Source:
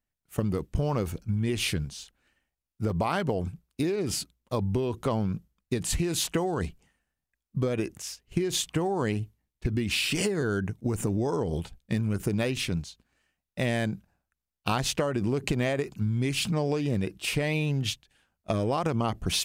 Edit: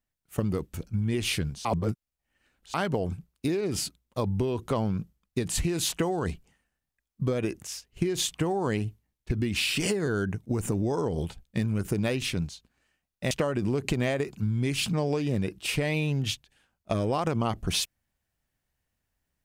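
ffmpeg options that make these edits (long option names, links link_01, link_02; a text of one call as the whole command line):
ffmpeg -i in.wav -filter_complex "[0:a]asplit=5[link_01][link_02][link_03][link_04][link_05];[link_01]atrim=end=0.742[link_06];[link_02]atrim=start=1.088:end=2.002[link_07];[link_03]atrim=start=1.998:end=3.092,asetpts=PTS-STARTPTS,areverse[link_08];[link_04]atrim=start=3.088:end=13.662[link_09];[link_05]atrim=start=14.898[link_10];[link_06][link_07]acrossfade=duration=0.004:curve1=hsin:curve2=hsin[link_11];[link_11][link_08]acrossfade=duration=0.004:curve1=hsin:curve2=hsin[link_12];[link_12][link_09]acrossfade=duration=0.004:curve1=hsin:curve2=hsin[link_13];[link_13][link_10]acrossfade=duration=0.004:curve1=hsin:curve2=hsin" out.wav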